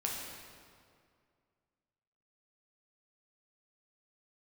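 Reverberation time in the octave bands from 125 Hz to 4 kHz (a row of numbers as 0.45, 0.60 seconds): 2.4, 2.3, 2.3, 2.1, 1.8, 1.6 seconds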